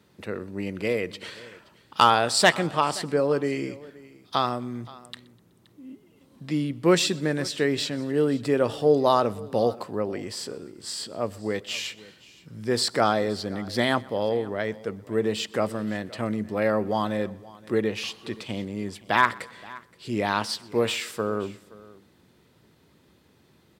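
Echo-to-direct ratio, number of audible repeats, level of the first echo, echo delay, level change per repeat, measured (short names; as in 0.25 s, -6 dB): -18.5 dB, 3, -24.0 dB, 0.125 s, no steady repeat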